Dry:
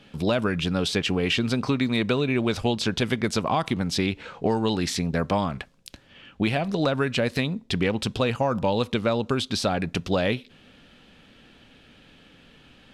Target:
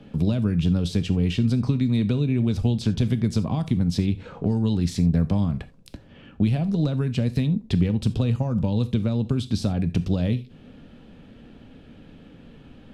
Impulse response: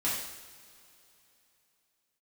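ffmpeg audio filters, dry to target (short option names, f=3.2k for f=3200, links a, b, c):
-filter_complex "[0:a]tiltshelf=f=930:g=8.5,acrossover=split=200|3000[a][b][c];[b]acompressor=threshold=-33dB:ratio=5[d];[a][d][c]amix=inputs=3:normalize=0,asplit=2[e][f];[1:a]atrim=start_sample=2205,afade=t=out:st=0.14:d=0.01,atrim=end_sample=6615,highshelf=f=7.6k:g=7[g];[f][g]afir=irnorm=-1:irlink=0,volume=-17.5dB[h];[e][h]amix=inputs=2:normalize=0"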